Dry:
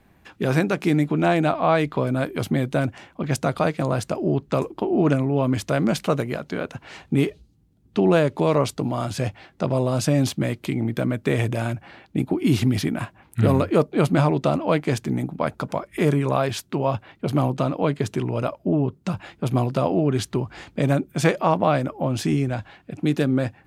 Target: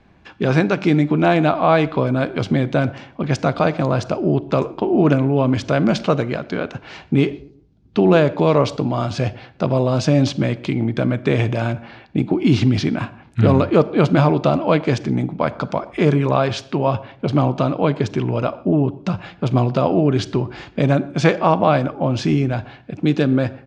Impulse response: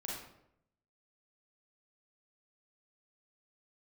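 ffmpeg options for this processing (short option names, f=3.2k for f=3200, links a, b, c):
-filter_complex "[0:a]lowpass=f=5.8k:w=0.5412,lowpass=f=5.8k:w=1.3066,bandreject=f=1.9k:w=19,asplit=2[a][b];[b]adelay=121,lowpass=f=1.1k:p=1,volume=-20dB,asplit=2[c][d];[d]adelay=121,lowpass=f=1.1k:p=1,volume=0.39,asplit=2[e][f];[f]adelay=121,lowpass=f=1.1k:p=1,volume=0.39[g];[a][c][e][g]amix=inputs=4:normalize=0,asplit=2[h][i];[1:a]atrim=start_sample=2205,afade=t=out:st=0.23:d=0.01,atrim=end_sample=10584[j];[i][j]afir=irnorm=-1:irlink=0,volume=-15dB[k];[h][k]amix=inputs=2:normalize=0,volume=3.5dB"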